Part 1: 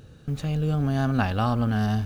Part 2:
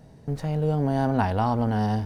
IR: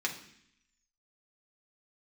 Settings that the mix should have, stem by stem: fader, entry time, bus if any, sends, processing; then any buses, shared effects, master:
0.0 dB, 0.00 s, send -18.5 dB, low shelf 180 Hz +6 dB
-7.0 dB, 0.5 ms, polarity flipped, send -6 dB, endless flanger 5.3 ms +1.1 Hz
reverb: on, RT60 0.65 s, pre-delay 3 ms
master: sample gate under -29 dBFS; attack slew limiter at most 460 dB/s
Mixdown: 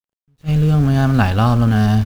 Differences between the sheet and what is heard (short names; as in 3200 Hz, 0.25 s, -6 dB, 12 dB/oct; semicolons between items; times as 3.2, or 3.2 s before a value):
stem 1 0.0 dB -> +6.5 dB; stem 2: send off